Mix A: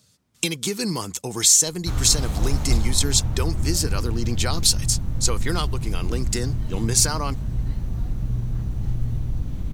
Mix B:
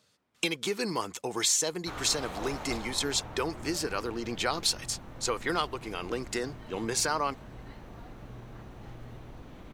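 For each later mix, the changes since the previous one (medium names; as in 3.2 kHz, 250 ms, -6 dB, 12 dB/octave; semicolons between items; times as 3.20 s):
background: add bass shelf 190 Hz -9.5 dB; master: add tone controls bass -15 dB, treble -13 dB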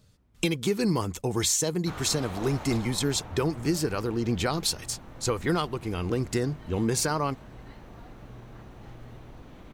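speech: remove frequency weighting A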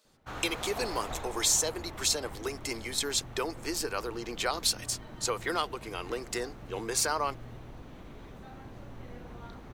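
speech: add Bessel high-pass 560 Hz, order 4; background: entry -1.60 s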